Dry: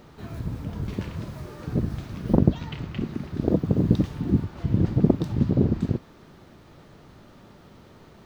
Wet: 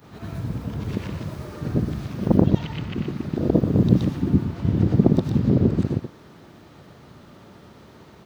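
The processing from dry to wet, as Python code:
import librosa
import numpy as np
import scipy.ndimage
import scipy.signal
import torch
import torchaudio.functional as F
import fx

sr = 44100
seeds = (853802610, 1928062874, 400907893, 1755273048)

y = fx.frame_reverse(x, sr, frame_ms=245.0)
y = scipy.signal.sosfilt(scipy.signal.butter(2, 66.0, 'highpass', fs=sr, output='sos'), y)
y = F.gain(torch.from_numpy(y), 6.5).numpy()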